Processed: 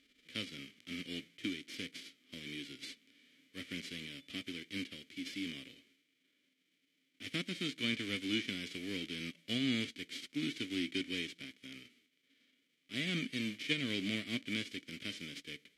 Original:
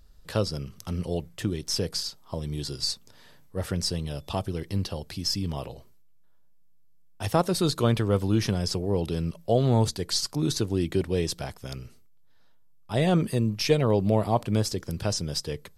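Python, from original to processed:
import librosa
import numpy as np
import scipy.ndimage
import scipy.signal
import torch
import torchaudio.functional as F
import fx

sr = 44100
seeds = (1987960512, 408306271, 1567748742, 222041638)

y = fx.envelope_flatten(x, sr, power=0.3)
y = fx.vowel_filter(y, sr, vowel='i')
y = fx.env_lowpass_down(y, sr, base_hz=1500.0, full_db=-19.5)
y = F.gain(torch.from_numpy(y), 1.5).numpy()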